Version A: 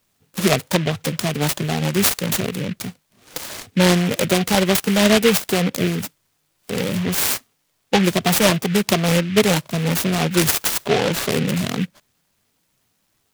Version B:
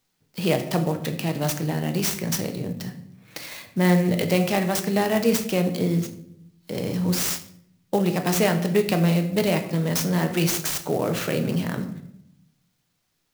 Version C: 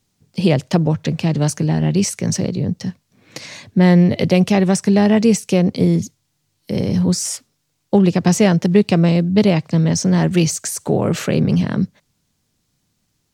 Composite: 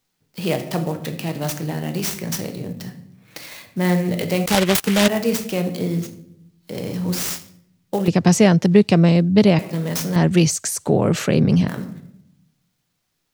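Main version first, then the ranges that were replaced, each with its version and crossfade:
B
4.46–5.08 s: from A
8.08–9.59 s: from C
10.16–11.68 s: from C

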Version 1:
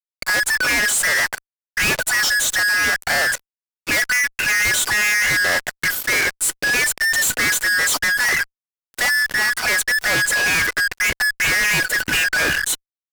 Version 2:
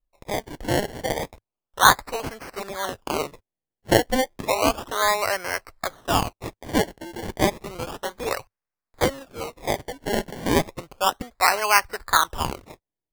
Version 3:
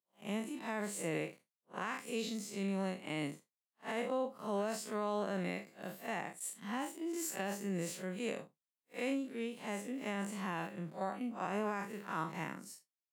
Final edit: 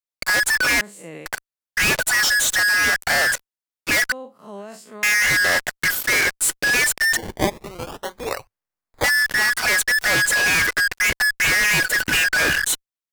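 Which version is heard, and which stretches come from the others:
1
0.81–1.26 s: from 3
4.12–5.03 s: from 3
7.17–9.04 s: from 2

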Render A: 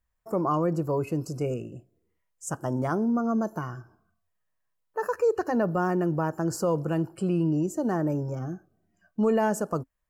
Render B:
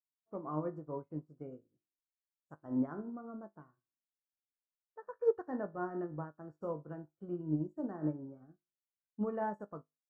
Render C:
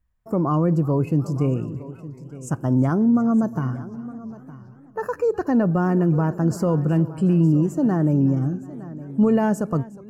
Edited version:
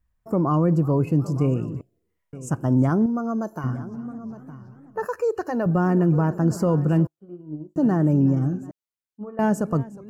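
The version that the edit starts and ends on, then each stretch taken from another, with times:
C
1.81–2.33 s: from A
3.06–3.64 s: from A
5.05–5.66 s: from A
7.07–7.76 s: from B
8.71–9.39 s: from B

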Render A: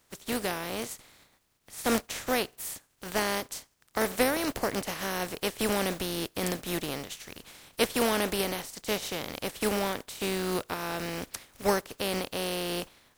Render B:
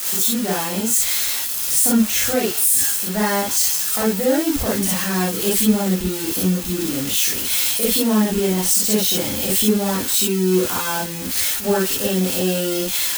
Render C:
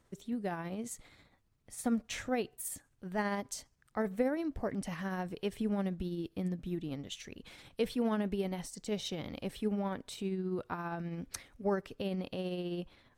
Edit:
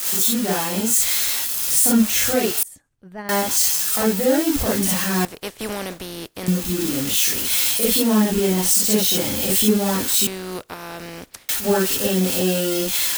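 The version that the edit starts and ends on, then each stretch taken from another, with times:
B
2.63–3.29 s: from C
5.25–6.48 s: from A
10.27–11.49 s: from A

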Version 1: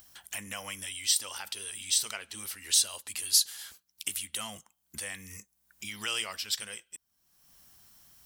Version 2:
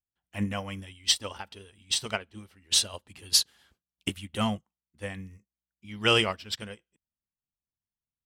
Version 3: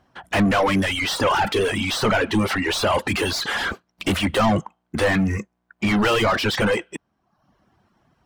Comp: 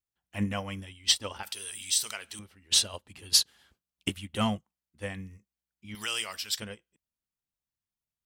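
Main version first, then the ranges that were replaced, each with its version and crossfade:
2
1.43–2.39 s: from 1
5.95–6.60 s: from 1
not used: 3

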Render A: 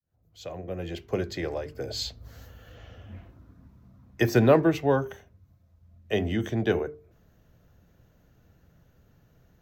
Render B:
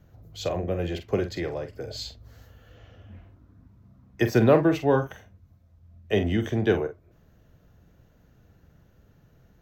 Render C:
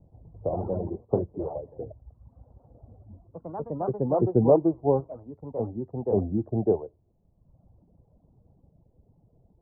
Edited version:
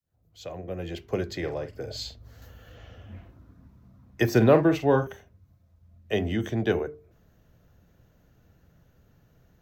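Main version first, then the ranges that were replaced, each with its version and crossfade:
A
1.44–2.42 s: from B
4.35–5.07 s: from B
not used: C

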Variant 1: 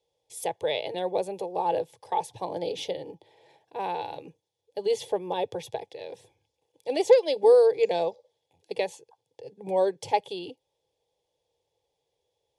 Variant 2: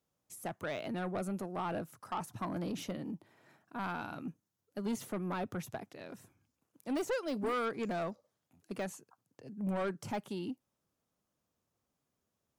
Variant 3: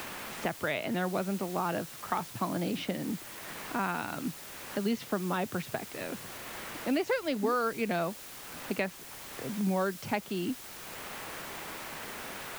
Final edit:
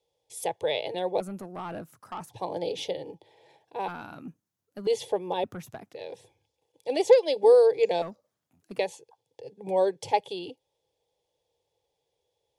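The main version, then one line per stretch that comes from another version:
1
1.20–2.30 s: from 2
3.88–4.87 s: from 2
5.44–5.95 s: from 2
8.02–8.79 s: from 2
not used: 3

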